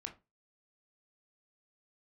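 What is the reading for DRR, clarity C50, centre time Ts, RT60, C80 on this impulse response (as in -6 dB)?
3.5 dB, 13.0 dB, 11 ms, 0.25 s, 21.0 dB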